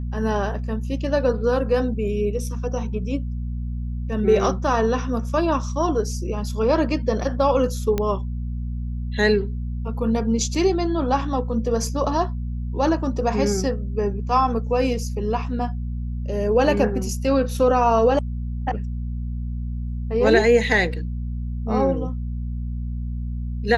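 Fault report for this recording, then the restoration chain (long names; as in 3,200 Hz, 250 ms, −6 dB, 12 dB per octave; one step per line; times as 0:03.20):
mains hum 60 Hz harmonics 4 −27 dBFS
0:07.98: click −10 dBFS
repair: click removal
hum removal 60 Hz, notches 4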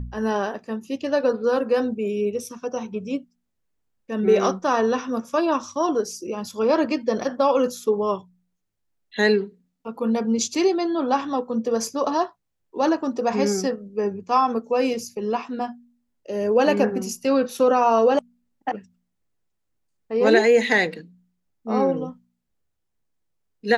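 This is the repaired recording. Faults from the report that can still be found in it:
none of them is left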